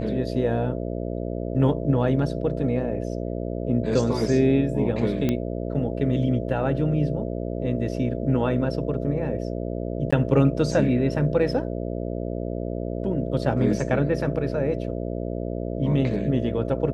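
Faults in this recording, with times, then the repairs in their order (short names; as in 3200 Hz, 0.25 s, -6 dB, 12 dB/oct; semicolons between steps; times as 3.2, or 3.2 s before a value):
buzz 60 Hz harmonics 11 -29 dBFS
5.29 pop -11 dBFS
10.11–10.12 gap 15 ms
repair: de-click; de-hum 60 Hz, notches 11; interpolate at 10.11, 15 ms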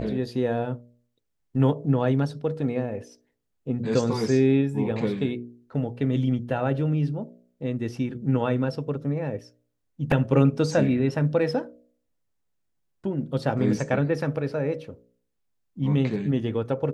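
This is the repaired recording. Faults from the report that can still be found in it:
none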